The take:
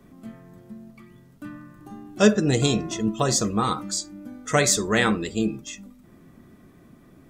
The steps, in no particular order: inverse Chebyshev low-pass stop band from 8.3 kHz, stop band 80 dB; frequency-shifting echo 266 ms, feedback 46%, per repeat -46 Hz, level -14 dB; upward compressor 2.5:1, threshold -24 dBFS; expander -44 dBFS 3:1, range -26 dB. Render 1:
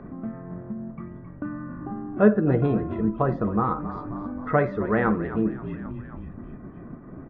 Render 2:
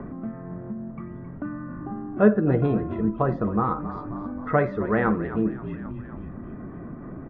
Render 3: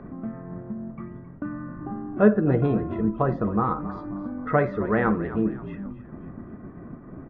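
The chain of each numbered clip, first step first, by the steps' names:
expander > frequency-shifting echo > inverse Chebyshev low-pass > upward compressor; frequency-shifting echo > inverse Chebyshev low-pass > upward compressor > expander; expander > inverse Chebyshev low-pass > upward compressor > frequency-shifting echo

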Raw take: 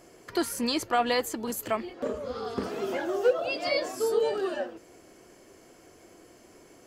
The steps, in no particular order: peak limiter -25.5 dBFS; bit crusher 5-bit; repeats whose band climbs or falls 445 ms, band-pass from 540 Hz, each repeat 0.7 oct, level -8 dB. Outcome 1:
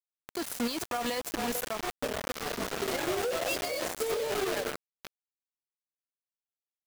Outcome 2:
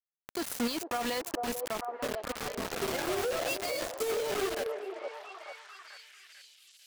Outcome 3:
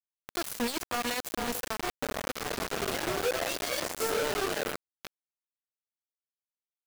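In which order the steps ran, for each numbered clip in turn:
repeats whose band climbs or falls > bit crusher > peak limiter; bit crusher > repeats whose band climbs or falls > peak limiter; repeats whose band climbs or falls > peak limiter > bit crusher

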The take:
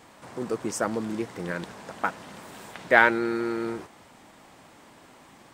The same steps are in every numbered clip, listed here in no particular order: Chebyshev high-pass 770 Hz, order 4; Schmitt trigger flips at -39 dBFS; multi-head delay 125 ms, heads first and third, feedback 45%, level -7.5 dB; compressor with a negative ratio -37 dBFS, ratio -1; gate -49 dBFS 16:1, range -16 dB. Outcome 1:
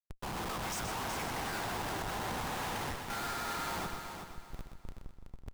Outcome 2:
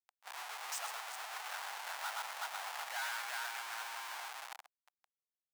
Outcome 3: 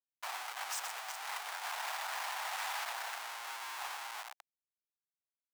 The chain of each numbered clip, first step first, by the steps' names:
Chebyshev high-pass > compressor with a negative ratio > Schmitt trigger > gate > multi-head delay; multi-head delay > Schmitt trigger > compressor with a negative ratio > Chebyshev high-pass > gate; gate > compressor with a negative ratio > multi-head delay > Schmitt trigger > Chebyshev high-pass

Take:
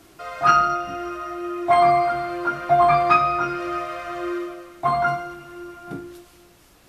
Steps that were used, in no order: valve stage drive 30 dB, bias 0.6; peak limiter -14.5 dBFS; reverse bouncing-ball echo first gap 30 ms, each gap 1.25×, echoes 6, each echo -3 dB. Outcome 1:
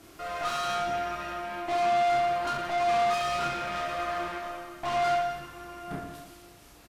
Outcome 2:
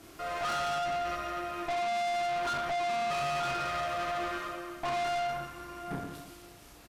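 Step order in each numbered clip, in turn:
peak limiter > valve stage > reverse bouncing-ball echo; reverse bouncing-ball echo > peak limiter > valve stage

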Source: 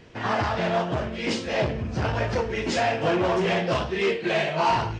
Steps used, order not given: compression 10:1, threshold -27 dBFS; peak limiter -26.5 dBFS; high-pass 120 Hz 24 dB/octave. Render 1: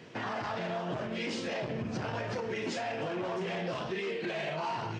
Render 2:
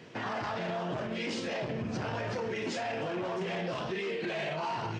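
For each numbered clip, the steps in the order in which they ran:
compression > high-pass > peak limiter; high-pass > peak limiter > compression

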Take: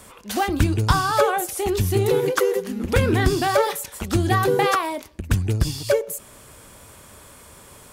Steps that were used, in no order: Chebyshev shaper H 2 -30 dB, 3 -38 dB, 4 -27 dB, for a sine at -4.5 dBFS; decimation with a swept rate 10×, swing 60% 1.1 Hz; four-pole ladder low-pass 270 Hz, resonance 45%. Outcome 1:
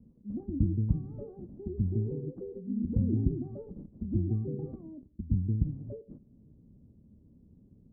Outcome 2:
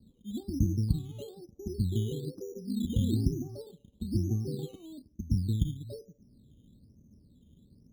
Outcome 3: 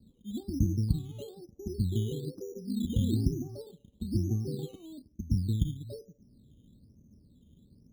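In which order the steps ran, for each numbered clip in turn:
decimation with a swept rate > four-pole ladder low-pass > Chebyshev shaper; four-pole ladder low-pass > decimation with a swept rate > Chebyshev shaper; four-pole ladder low-pass > Chebyshev shaper > decimation with a swept rate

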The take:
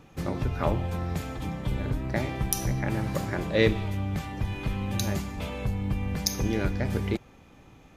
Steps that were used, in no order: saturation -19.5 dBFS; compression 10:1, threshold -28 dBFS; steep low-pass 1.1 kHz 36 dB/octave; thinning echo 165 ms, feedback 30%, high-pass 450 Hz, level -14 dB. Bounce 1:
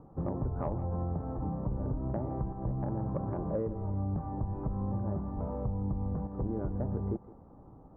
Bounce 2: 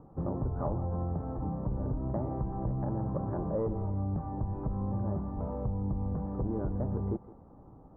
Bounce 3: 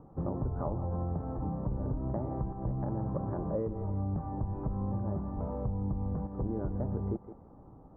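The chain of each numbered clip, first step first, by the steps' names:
compression > steep low-pass > saturation > thinning echo; saturation > steep low-pass > compression > thinning echo; thinning echo > compression > saturation > steep low-pass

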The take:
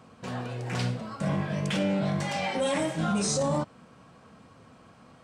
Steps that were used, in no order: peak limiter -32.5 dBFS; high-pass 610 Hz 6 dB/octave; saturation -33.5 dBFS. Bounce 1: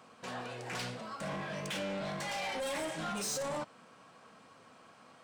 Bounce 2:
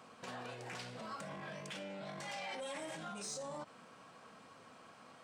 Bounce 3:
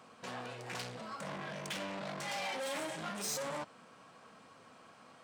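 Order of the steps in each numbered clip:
high-pass > saturation > peak limiter; peak limiter > high-pass > saturation; saturation > peak limiter > high-pass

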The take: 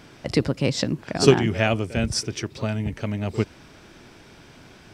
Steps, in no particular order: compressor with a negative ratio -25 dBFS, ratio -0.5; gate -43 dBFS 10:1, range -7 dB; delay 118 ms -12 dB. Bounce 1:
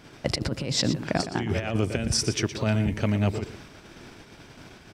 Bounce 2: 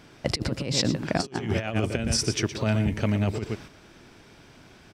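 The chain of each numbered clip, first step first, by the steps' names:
compressor with a negative ratio > delay > gate; delay > gate > compressor with a negative ratio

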